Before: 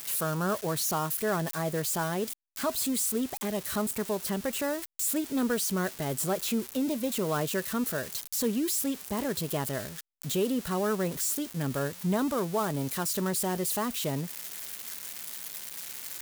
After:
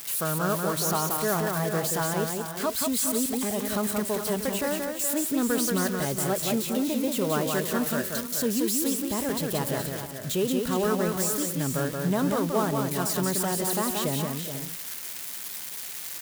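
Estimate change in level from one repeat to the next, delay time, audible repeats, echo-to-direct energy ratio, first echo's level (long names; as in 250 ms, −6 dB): repeats not evenly spaced, 179 ms, 4, −2.5 dB, −4.0 dB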